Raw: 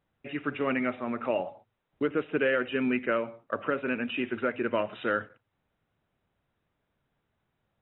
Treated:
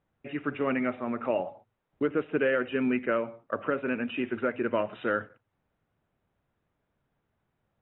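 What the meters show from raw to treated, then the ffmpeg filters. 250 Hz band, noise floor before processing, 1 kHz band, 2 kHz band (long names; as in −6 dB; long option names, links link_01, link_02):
+1.0 dB, −80 dBFS, −0.5 dB, −1.5 dB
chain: -af "aemphasis=mode=reproduction:type=75fm"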